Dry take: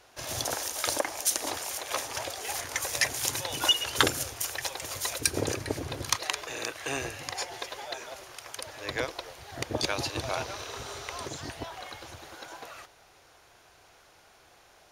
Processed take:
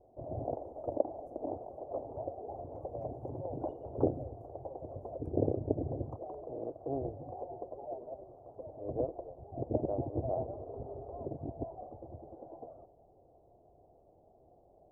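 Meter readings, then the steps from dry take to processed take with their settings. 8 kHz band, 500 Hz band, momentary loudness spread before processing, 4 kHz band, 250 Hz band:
under -40 dB, +0.5 dB, 16 LU, under -40 dB, +1.0 dB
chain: elliptic low-pass 700 Hz, stop band 60 dB; gain +1 dB

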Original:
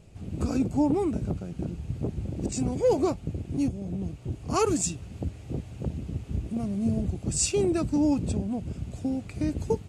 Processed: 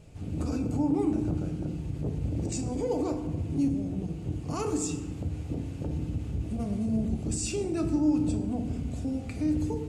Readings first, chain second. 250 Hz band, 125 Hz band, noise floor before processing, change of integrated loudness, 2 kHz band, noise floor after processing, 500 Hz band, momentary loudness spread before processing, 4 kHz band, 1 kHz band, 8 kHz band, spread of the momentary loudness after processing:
-0.5 dB, -0.5 dB, -44 dBFS, -1.5 dB, -4.0 dB, -38 dBFS, -5.5 dB, 11 LU, -5.5 dB, -5.5 dB, -6.0 dB, 8 LU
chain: limiter -25 dBFS, peak gain reduction 11.5 dB; FDN reverb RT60 1.2 s, low-frequency decay 1.45×, high-frequency decay 0.5×, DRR 4 dB

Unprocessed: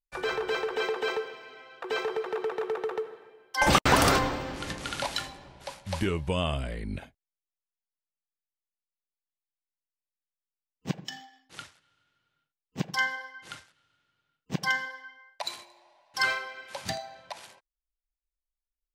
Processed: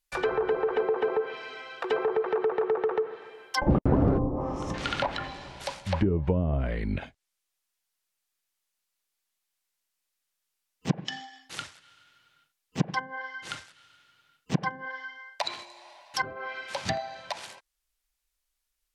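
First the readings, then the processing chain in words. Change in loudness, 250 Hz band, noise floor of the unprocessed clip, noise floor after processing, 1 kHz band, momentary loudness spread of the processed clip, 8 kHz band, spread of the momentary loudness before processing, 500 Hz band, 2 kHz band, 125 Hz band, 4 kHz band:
-0.5 dB, +4.5 dB, under -85 dBFS, -83 dBFS, -2.0 dB, 14 LU, -7.5 dB, 22 LU, +3.5 dB, -5.0 dB, +5.0 dB, -4.5 dB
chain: treble ducked by the level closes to 380 Hz, closed at -23.5 dBFS; spectral gain 4.19–4.74, 1300–5100 Hz -17 dB; mismatched tape noise reduction encoder only; gain +5 dB

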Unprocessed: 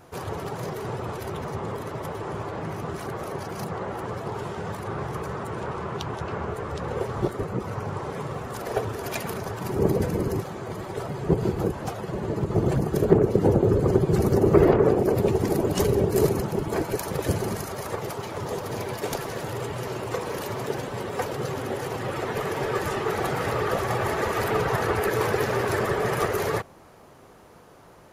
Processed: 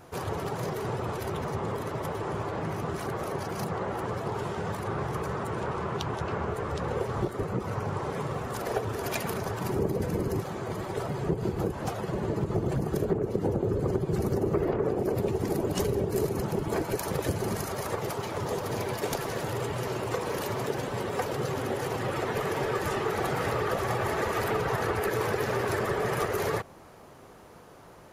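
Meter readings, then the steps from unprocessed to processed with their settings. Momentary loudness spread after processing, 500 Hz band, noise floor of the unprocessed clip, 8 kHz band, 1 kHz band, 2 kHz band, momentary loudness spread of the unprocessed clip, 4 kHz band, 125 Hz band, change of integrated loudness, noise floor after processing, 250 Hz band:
5 LU, -4.5 dB, -50 dBFS, -2.5 dB, -2.5 dB, -2.5 dB, 12 LU, -2.0 dB, -4.0 dB, -4.0 dB, -50 dBFS, -5.0 dB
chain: compressor 4:1, threshold -25 dBFS, peak gain reduction 12.5 dB

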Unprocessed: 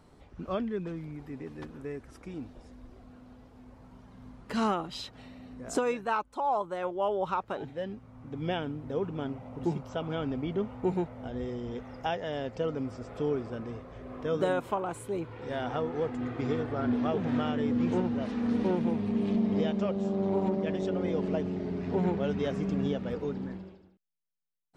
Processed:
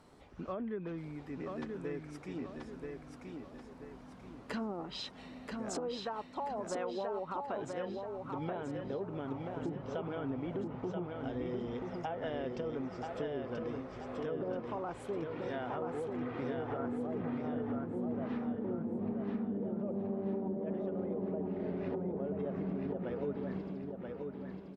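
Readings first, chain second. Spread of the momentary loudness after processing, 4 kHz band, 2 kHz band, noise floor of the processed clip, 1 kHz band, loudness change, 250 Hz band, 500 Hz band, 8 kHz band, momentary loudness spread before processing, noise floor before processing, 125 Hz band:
7 LU, -6.0 dB, -7.0 dB, -52 dBFS, -7.5 dB, -7.0 dB, -6.5 dB, -5.5 dB, -4.0 dB, 14 LU, -58 dBFS, -7.0 dB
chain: treble ducked by the level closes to 490 Hz, closed at -24 dBFS; low shelf 150 Hz -9 dB; limiter -25.5 dBFS, peak gain reduction 8 dB; compressor, threshold -35 dBFS, peak gain reduction 6.5 dB; on a send: feedback echo 0.982 s, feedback 41%, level -4 dB

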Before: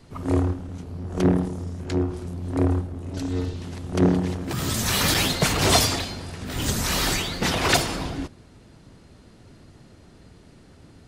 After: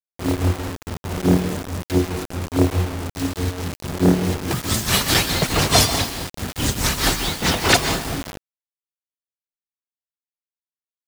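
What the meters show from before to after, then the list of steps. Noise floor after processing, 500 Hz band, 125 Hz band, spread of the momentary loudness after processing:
under -85 dBFS, +3.0 dB, +3.0 dB, 12 LU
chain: tremolo triangle 4.7 Hz, depth 95%; plate-style reverb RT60 0.67 s, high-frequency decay 0.75×, pre-delay 0.115 s, DRR 8 dB; requantised 6-bit, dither none; gain +7 dB

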